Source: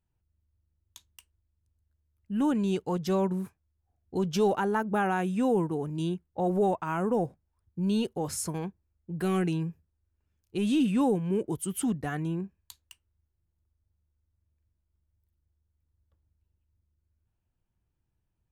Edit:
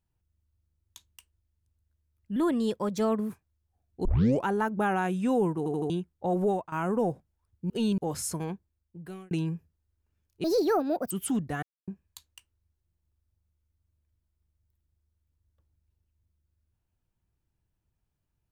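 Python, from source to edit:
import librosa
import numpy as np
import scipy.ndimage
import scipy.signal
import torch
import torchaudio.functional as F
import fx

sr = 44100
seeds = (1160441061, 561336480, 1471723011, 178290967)

y = fx.edit(x, sr, fx.speed_span(start_s=2.36, length_s=1.08, speed=1.15),
    fx.tape_start(start_s=4.19, length_s=0.4),
    fx.stutter_over(start_s=5.72, slice_s=0.08, count=4),
    fx.fade_out_to(start_s=6.58, length_s=0.28, floor_db=-12.5),
    fx.reverse_span(start_s=7.84, length_s=0.28),
    fx.fade_out_span(start_s=8.62, length_s=0.83),
    fx.speed_span(start_s=10.58, length_s=1.06, speed=1.59),
    fx.silence(start_s=12.16, length_s=0.25), tone=tone)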